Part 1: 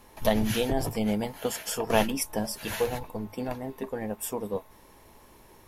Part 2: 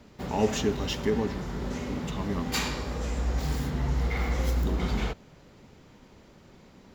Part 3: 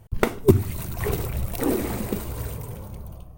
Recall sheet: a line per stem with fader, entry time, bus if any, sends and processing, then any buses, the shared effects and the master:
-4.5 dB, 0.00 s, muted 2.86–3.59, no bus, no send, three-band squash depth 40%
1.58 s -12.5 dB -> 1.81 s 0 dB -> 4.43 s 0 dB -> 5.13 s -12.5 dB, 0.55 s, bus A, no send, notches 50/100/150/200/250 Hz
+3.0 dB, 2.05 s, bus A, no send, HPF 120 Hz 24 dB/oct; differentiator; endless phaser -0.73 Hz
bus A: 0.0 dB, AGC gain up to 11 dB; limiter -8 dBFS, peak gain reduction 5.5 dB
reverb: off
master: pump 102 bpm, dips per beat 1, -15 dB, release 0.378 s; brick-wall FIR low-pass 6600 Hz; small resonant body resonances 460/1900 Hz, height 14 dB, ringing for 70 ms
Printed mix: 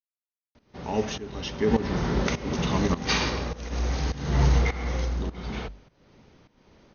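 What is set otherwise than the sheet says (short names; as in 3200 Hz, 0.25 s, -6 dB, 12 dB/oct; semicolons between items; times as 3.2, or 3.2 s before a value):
stem 1: muted; stem 3: missing endless phaser -0.73 Hz; master: missing small resonant body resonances 460/1900 Hz, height 14 dB, ringing for 70 ms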